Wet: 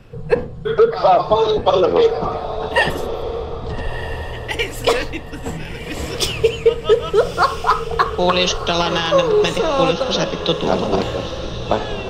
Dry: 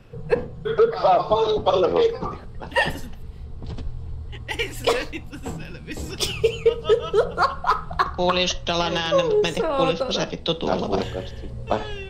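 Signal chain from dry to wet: diffused feedback echo 1.267 s, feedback 40%, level -10.5 dB; gain +4.5 dB

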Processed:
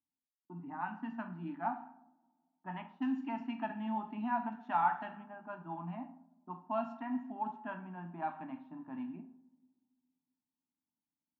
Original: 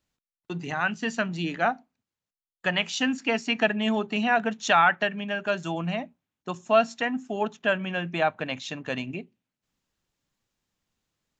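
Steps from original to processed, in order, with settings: double band-pass 480 Hz, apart 1.8 oct; two-slope reverb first 0.59 s, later 2.2 s, from -21 dB, DRR 4.5 dB; low-pass opened by the level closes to 570 Hz, open at -29 dBFS; gain -2.5 dB

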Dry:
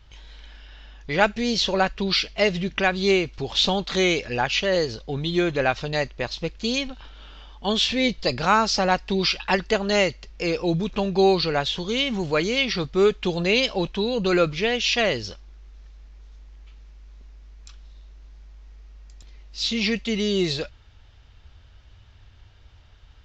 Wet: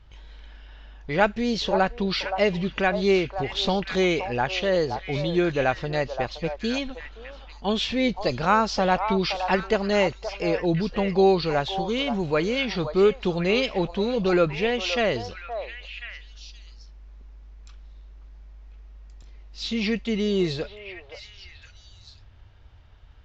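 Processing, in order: high shelf 2800 Hz -10 dB; on a send: delay with a stepping band-pass 0.522 s, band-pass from 800 Hz, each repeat 1.4 oct, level -5 dB

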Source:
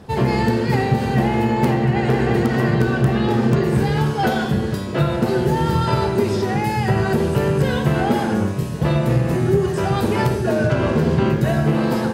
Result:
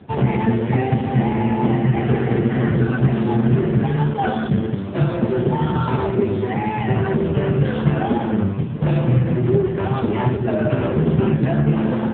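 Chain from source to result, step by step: low shelf 83 Hz +8.5 dB; AMR-NB 5.9 kbps 8000 Hz

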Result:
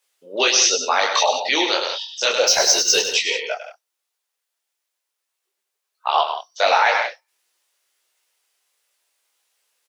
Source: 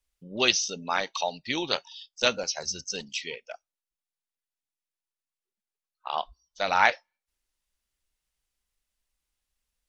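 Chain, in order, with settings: HPF 410 Hz 24 dB/oct; in parallel at -1 dB: negative-ratio compressor -29 dBFS; 2.47–3 on the sum: power-law curve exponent 0.7; on a send: loudspeakers at several distances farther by 35 m -9 dB, 58 m -12 dB; on the sum: maximiser +10.5 dB; detuned doubles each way 51 cents

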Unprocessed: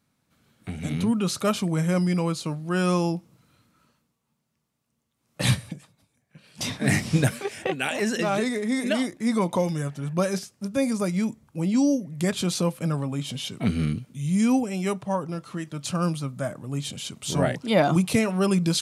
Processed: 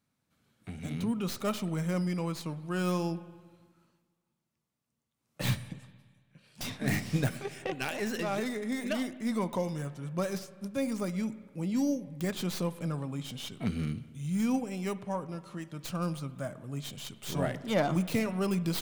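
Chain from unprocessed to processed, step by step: tracing distortion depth 0.16 ms; spring tank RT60 1.6 s, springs 55/59 ms, chirp 60 ms, DRR 15 dB; gain -8 dB

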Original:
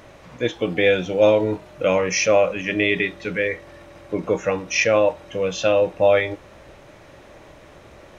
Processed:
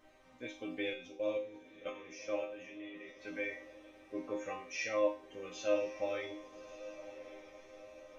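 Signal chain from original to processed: 0.9–3.19 level quantiser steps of 17 dB; resonator bank C4 minor, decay 0.38 s; diffused feedback echo 1.159 s, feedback 51%, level -14 dB; gain +2 dB

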